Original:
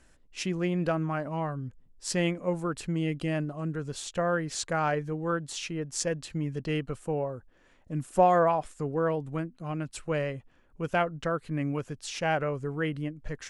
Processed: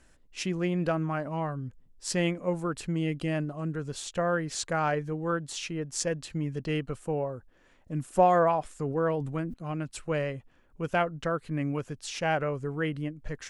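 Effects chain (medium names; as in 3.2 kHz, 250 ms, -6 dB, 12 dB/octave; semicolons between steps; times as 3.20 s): 8.67–9.54 s: decay stretcher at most 54 dB/s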